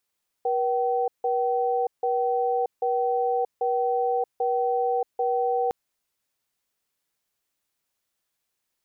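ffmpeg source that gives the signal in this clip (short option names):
-f lavfi -i "aevalsrc='0.0631*(sin(2*PI*481*t)+sin(2*PI*766*t))*clip(min(mod(t,0.79),0.63-mod(t,0.79))/0.005,0,1)':d=5.26:s=44100"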